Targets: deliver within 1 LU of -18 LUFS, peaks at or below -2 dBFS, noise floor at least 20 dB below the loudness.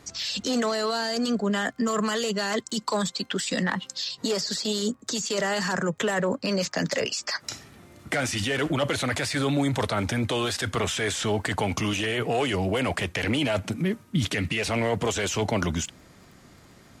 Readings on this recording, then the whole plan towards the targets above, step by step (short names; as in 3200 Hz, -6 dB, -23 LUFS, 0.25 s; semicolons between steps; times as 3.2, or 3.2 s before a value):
ticks 20/s; loudness -26.5 LUFS; peak -13.0 dBFS; loudness target -18.0 LUFS
-> de-click; gain +8.5 dB